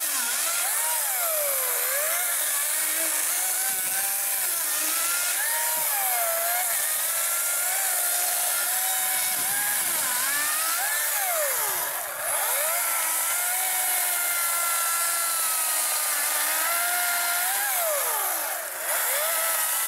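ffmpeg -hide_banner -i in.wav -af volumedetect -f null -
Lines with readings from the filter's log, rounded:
mean_volume: -25.4 dB
max_volume: -13.1 dB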